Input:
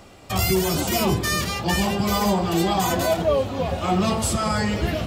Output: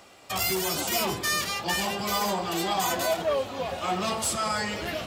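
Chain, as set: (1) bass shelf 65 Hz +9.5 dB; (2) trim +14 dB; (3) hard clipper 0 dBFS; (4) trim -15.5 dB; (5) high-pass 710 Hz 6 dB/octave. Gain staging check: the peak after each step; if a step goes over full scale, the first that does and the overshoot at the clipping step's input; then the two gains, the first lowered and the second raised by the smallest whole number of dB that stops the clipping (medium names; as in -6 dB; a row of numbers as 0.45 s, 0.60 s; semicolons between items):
-7.5 dBFS, +6.5 dBFS, 0.0 dBFS, -15.5 dBFS, -14.5 dBFS; step 2, 6.5 dB; step 2 +7 dB, step 4 -8.5 dB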